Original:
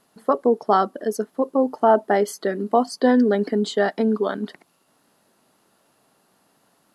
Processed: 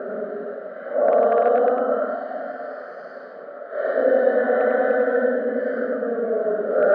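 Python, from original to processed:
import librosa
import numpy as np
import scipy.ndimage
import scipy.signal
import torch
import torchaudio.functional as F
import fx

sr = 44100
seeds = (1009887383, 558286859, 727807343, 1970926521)

p1 = fx.bin_compress(x, sr, power=0.4)
p2 = fx.paulstretch(p1, sr, seeds[0], factor=10.0, window_s=0.05, from_s=2.63)
p3 = (np.mod(10.0 ** (1.0 / 20.0) * p2 + 1.0, 2.0) - 1.0) / 10.0 ** (1.0 / 20.0)
p4 = p2 + (p3 * 10.0 ** (-7.0 / 20.0))
p5 = fx.double_bandpass(p4, sr, hz=930.0, octaves=1.3)
p6 = fx.air_absorb(p5, sr, metres=380.0)
y = p6 + 10.0 ** (-4.0 / 20.0) * np.pad(p6, (int(100 * sr / 1000.0), 0))[:len(p6)]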